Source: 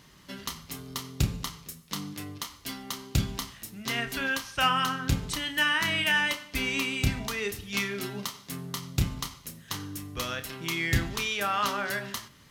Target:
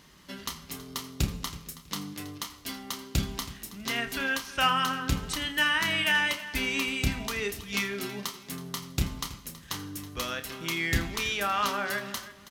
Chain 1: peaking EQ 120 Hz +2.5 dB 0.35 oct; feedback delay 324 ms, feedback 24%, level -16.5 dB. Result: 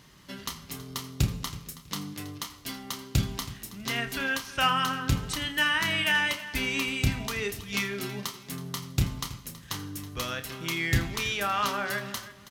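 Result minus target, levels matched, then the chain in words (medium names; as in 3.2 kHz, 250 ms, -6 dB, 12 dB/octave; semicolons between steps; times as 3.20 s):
125 Hz band +3.5 dB
peaking EQ 120 Hz -9 dB 0.35 oct; feedback delay 324 ms, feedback 24%, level -16.5 dB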